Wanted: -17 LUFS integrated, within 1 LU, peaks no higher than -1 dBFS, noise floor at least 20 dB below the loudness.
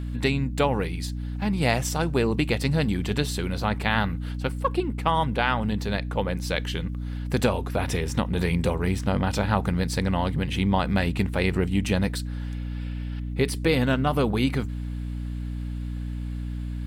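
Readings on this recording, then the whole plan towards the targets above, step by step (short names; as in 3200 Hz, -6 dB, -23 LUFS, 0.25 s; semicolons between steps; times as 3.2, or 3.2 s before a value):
hum 60 Hz; harmonics up to 300 Hz; hum level -28 dBFS; loudness -26.0 LUFS; peak -7.5 dBFS; loudness target -17.0 LUFS
-> notches 60/120/180/240/300 Hz; gain +9 dB; limiter -1 dBFS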